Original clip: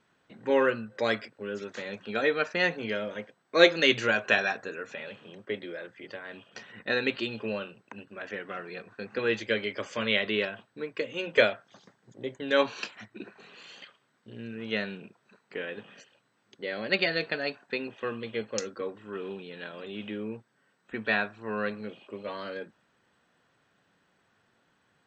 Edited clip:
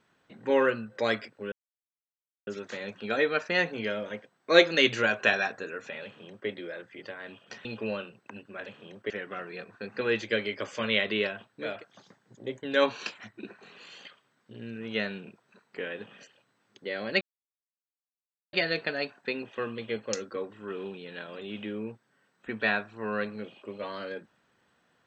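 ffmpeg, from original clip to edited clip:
ffmpeg -i in.wav -filter_complex "[0:a]asplit=7[link_01][link_02][link_03][link_04][link_05][link_06][link_07];[link_01]atrim=end=1.52,asetpts=PTS-STARTPTS,afade=type=out:start_time=1.516:duration=0.004:curve=hsin,apad=pad_dur=0.95[link_08];[link_02]atrim=start=1.52:end=6.702,asetpts=PTS-STARTPTS,afade=type=in:duration=0.004:curve=hsin[link_09];[link_03]atrim=start=7.268:end=8.282[link_10];[link_04]atrim=start=5.088:end=5.532[link_11];[link_05]atrim=start=8.278:end=11.03[link_12];[link_06]atrim=start=11.38:end=16.98,asetpts=PTS-STARTPTS,afade=type=out:start_time=5.596:duration=0.004:curve=hsin,apad=pad_dur=1.32[link_13];[link_07]atrim=start=16.98,asetpts=PTS-STARTPTS,afade=type=in:duration=0.004:curve=hsin[link_14];[link_08][link_09]concat=n=2:v=0:a=1[link_15];[link_15][link_10]acrossfade=duration=0.004:curve1=hsin:curve2=hsin[link_16];[link_16][link_11]acrossfade=duration=0.004:curve1=hsin:curve2=hsin[link_17];[link_17][link_12]acrossfade=duration=0.004:curve1=hsin:curve2=hsin[link_18];[link_13][link_14]concat=n=2:v=0:a=1[link_19];[link_18][link_19]acrossfade=duration=0.24:curve1=tri:curve2=tri" out.wav

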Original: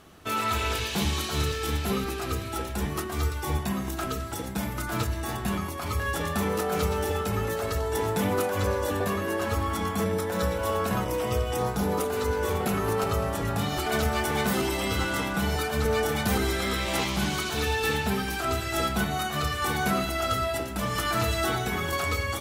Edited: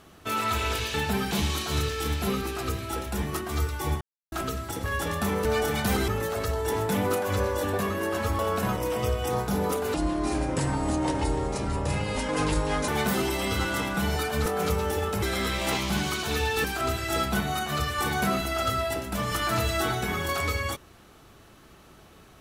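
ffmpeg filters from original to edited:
ffmpeg -i in.wav -filter_complex "[0:a]asplit=14[link_01][link_02][link_03][link_04][link_05][link_06][link_07][link_08][link_09][link_10][link_11][link_12][link_13][link_14];[link_01]atrim=end=0.942[link_15];[link_02]atrim=start=17.908:end=18.282[link_16];[link_03]atrim=start=0.938:end=3.64,asetpts=PTS-STARTPTS,afade=type=out:start_time=2.698:duration=0.004:curve=hsin[link_17];[link_04]atrim=start=3.64:end=3.95,asetpts=PTS-STARTPTS,volume=0[link_18];[link_05]atrim=start=3.95:end=4.472,asetpts=PTS-STARTPTS,afade=type=in:duration=0.004:curve=hsin[link_19];[link_06]atrim=start=5.978:end=6.592[link_20];[link_07]atrim=start=15.858:end=16.492[link_21];[link_08]atrim=start=7.348:end=9.662[link_22];[link_09]atrim=start=10.668:end=12.224[link_23];[link_10]atrim=start=12.22:end=14.28,asetpts=PTS-STARTPTS,asetrate=30870,aresample=44100,atrim=end_sample=129780,asetpts=PTS-STARTPTS[link_24];[link_11]atrim=start=14.276:end=15.862[link_25];[link_12]atrim=start=6.588:end=7.352[link_26];[link_13]atrim=start=16.488:end=17.912[link_27];[link_14]atrim=start=18.278[link_28];[link_15][link_16]acrossfade=duration=0.004:curve1=hsin:curve2=hsin[link_29];[link_17][link_18][link_19]concat=n=3:v=0:a=1[link_30];[link_29][link_30]acrossfade=duration=0.004:curve1=hsin:curve2=hsin[link_31];[link_31][link_20]acrossfade=duration=0.004:curve1=hsin:curve2=hsin[link_32];[link_32][link_21]acrossfade=duration=0.004:curve1=hsin:curve2=hsin[link_33];[link_33][link_22]acrossfade=duration=0.004:curve1=hsin:curve2=hsin[link_34];[link_34][link_23]acrossfade=duration=0.004:curve1=hsin:curve2=hsin[link_35];[link_35][link_24]acrossfade=duration=0.004:curve1=hsin:curve2=hsin[link_36];[link_36][link_25]acrossfade=duration=0.004:curve1=hsin:curve2=hsin[link_37];[link_37][link_26]acrossfade=duration=0.004:curve1=hsin:curve2=hsin[link_38];[link_38][link_27]acrossfade=duration=0.004:curve1=hsin:curve2=hsin[link_39];[link_39][link_28]acrossfade=duration=0.004:curve1=hsin:curve2=hsin" out.wav

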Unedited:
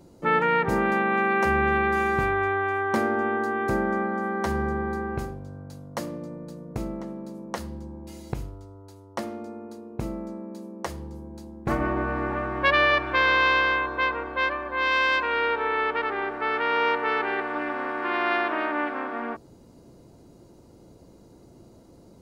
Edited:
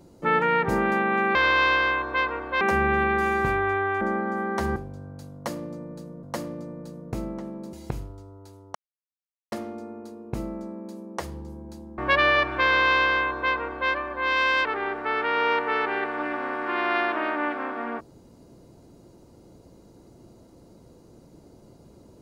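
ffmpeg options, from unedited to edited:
ffmpeg -i in.wav -filter_complex "[0:a]asplit=10[link_01][link_02][link_03][link_04][link_05][link_06][link_07][link_08][link_09][link_10];[link_01]atrim=end=1.352[link_11];[link_02]atrim=start=13.188:end=14.452[link_12];[link_03]atrim=start=1.348:end=2.752[link_13];[link_04]atrim=start=3.868:end=4.622[link_14];[link_05]atrim=start=5.268:end=6.742[link_15];[link_06]atrim=start=5.858:end=7.362[link_16];[link_07]atrim=start=8.158:end=9.18,asetpts=PTS-STARTPTS,afade=type=out:start_time=1.018:duration=0.004:curve=hsin,apad=pad_dur=0.77[link_17];[link_08]atrim=start=9.18:end=11.642,asetpts=PTS-STARTPTS,afade=type=in:duration=0.004:curve=hsin[link_18];[link_09]atrim=start=12.528:end=15.202[link_19];[link_10]atrim=start=16.008[link_20];[link_11][link_12]acrossfade=duration=0.004:curve1=hsin:curve2=hsin[link_21];[link_21][link_13]acrossfade=duration=0.004:curve1=hsin:curve2=hsin[link_22];[link_22][link_14]acrossfade=duration=0.004:curve1=hsin:curve2=hsin[link_23];[link_23][link_15]acrossfade=duration=0.004:curve1=hsin:curve2=hsin[link_24];[link_24][link_16]acrossfade=duration=0.004:curve1=hsin:curve2=hsin[link_25];[link_17][link_18]concat=n=2:v=0:a=1[link_26];[link_25][link_26]acrossfade=duration=0.004:curve1=hsin:curve2=hsin[link_27];[link_27][link_19]acrossfade=duration=0.004:curve1=hsin:curve2=hsin[link_28];[link_28][link_20]acrossfade=duration=0.004:curve1=hsin:curve2=hsin" out.wav

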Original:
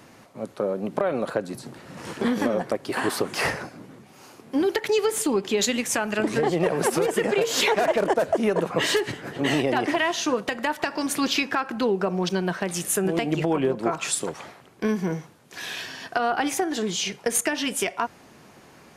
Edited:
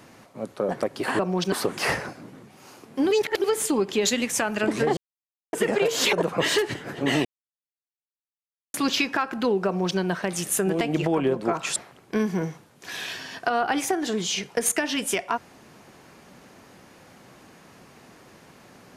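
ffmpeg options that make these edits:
ffmpeg -i in.wav -filter_complex "[0:a]asplit=12[link_01][link_02][link_03][link_04][link_05][link_06][link_07][link_08][link_09][link_10][link_11][link_12];[link_01]atrim=end=0.692[link_13];[link_02]atrim=start=2.578:end=3.082[link_14];[link_03]atrim=start=12.038:end=12.372[link_15];[link_04]atrim=start=3.078:end=4.672[link_16];[link_05]atrim=start=4.668:end=5.002,asetpts=PTS-STARTPTS,areverse[link_17];[link_06]atrim=start=4.998:end=6.53,asetpts=PTS-STARTPTS,afade=type=out:start_time=1.528:duration=0.004:curve=hsin[link_18];[link_07]atrim=start=6.53:end=7.09,asetpts=PTS-STARTPTS,volume=0[link_19];[link_08]atrim=start=7.09:end=7.692,asetpts=PTS-STARTPTS,afade=type=in:duration=0.004:curve=hsin[link_20];[link_09]atrim=start=8.508:end=9.63,asetpts=PTS-STARTPTS,afade=type=out:start_time=1.118:duration=0.004:curve=hsin[link_21];[link_10]atrim=start=9.63:end=11.12,asetpts=PTS-STARTPTS,volume=0[link_22];[link_11]atrim=start=11.12:end=14.142,asetpts=PTS-STARTPTS,afade=type=in:duration=0.004:curve=hsin[link_23];[link_12]atrim=start=14.448[link_24];[link_13][link_14]acrossfade=duration=0.004:curve1=hsin:curve2=hsin[link_25];[link_25][link_15]acrossfade=duration=0.004:curve1=hsin:curve2=hsin[link_26];[link_26][link_16]acrossfade=duration=0.004:curve1=hsin:curve2=hsin[link_27];[link_27][link_17]acrossfade=duration=0.004:curve1=hsin:curve2=hsin[link_28];[link_18][link_19][link_20]concat=n=3:v=0:a=1[link_29];[link_28][link_29]acrossfade=duration=0.004:curve1=hsin:curve2=hsin[link_30];[link_21][link_22][link_23]concat=n=3:v=0:a=1[link_31];[link_30][link_31]acrossfade=duration=0.004:curve1=hsin:curve2=hsin[link_32];[link_32][link_24]acrossfade=duration=0.004:curve1=hsin:curve2=hsin" out.wav

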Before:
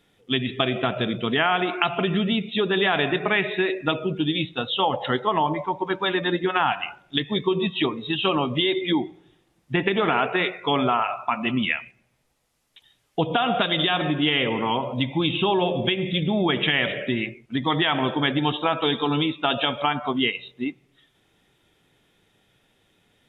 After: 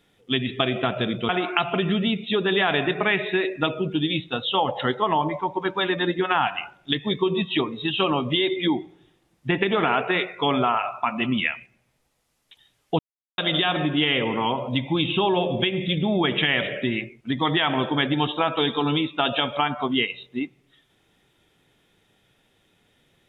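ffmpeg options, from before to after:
ffmpeg -i in.wav -filter_complex "[0:a]asplit=4[link_01][link_02][link_03][link_04];[link_01]atrim=end=1.292[link_05];[link_02]atrim=start=1.538:end=13.24,asetpts=PTS-STARTPTS,afade=type=out:start_time=11.698:duration=0.004:curve=hsin[link_06];[link_03]atrim=start=13.24:end=13.63,asetpts=PTS-STARTPTS,volume=0[link_07];[link_04]atrim=start=13.63,asetpts=PTS-STARTPTS,afade=type=in:duration=0.004:curve=hsin[link_08];[link_06][link_07][link_08]concat=n=3:v=0:a=1[link_09];[link_05][link_09]acrossfade=duration=0.004:curve1=hsin:curve2=hsin" out.wav

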